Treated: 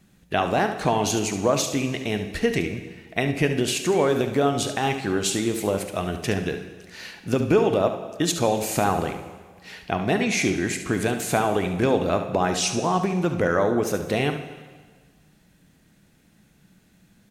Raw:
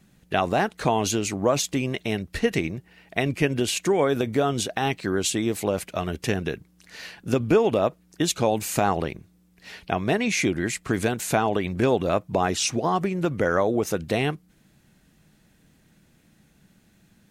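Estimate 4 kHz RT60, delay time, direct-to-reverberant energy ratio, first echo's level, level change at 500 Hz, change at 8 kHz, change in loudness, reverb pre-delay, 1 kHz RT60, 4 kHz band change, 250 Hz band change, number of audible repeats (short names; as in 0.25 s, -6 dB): 1.4 s, 71 ms, 6.5 dB, -10.5 dB, +1.0 dB, +1.0 dB, +1.0 dB, 6 ms, 1.5 s, +1.0 dB, +1.0 dB, 1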